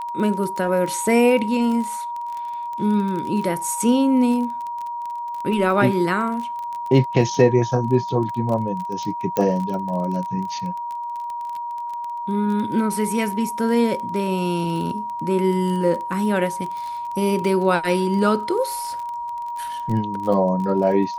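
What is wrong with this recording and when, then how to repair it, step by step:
surface crackle 24 per second −27 dBFS
whistle 950 Hz −26 dBFS
0:09.37: click −8 dBFS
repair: click removal
notch filter 950 Hz, Q 30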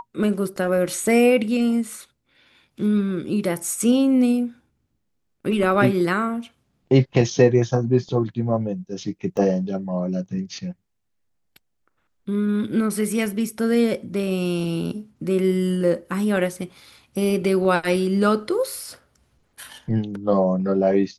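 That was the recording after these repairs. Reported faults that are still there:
0:09.37: click

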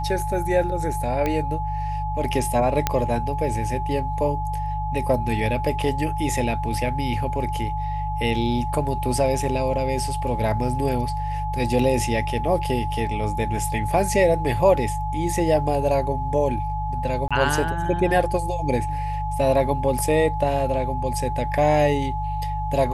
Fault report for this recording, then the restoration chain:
mains hum 50 Hz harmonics 3 −28 dBFS
whistle 850 Hz −27 dBFS
0:01.26: click −11 dBFS
0:02.87: click −4 dBFS
0:17.28–0:17.31: drop-out 26 ms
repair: click removal
hum removal 50 Hz, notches 3
notch filter 850 Hz, Q 30
repair the gap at 0:17.28, 26 ms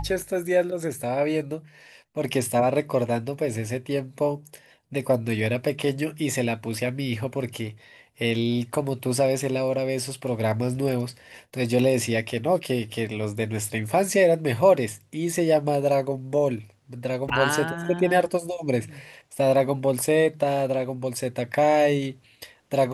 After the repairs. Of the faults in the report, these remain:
none of them is left

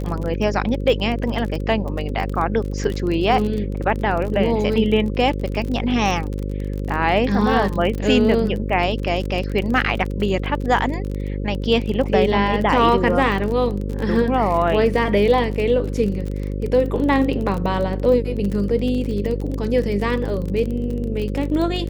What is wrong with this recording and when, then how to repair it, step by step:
mains buzz 50 Hz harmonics 11 −25 dBFS
surface crackle 32 per second −25 dBFS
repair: click removal
hum removal 50 Hz, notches 11

